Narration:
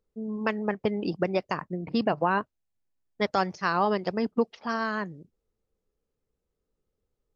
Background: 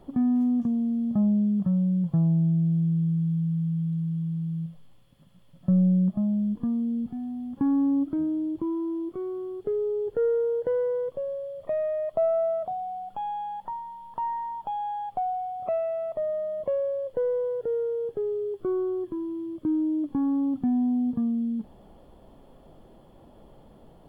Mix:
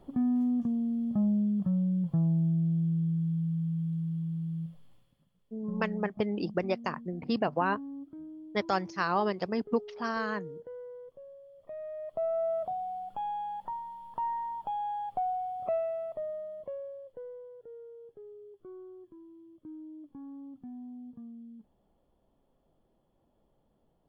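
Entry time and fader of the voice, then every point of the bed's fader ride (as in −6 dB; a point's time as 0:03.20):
5.35 s, −3.5 dB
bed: 0:04.95 −4.5 dB
0:05.37 −18 dB
0:11.47 −18 dB
0:12.60 −3 dB
0:15.74 −3 dB
0:17.49 −20 dB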